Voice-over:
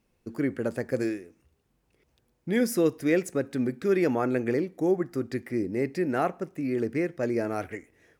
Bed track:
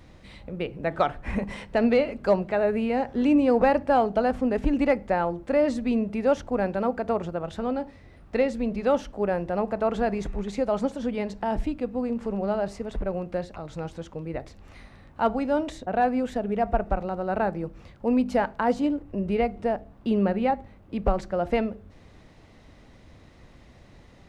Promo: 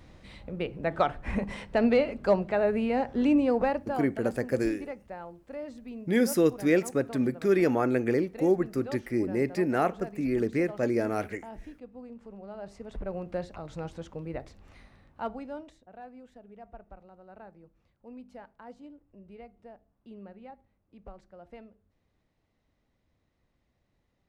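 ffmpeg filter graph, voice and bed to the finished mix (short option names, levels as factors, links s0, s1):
-filter_complex "[0:a]adelay=3600,volume=1.06[s0];[1:a]volume=3.76,afade=t=out:st=3.24:d=0.86:silence=0.177828,afade=t=in:st=12.51:d=0.89:silence=0.211349,afade=t=out:st=14.27:d=1.55:silence=0.1[s1];[s0][s1]amix=inputs=2:normalize=0"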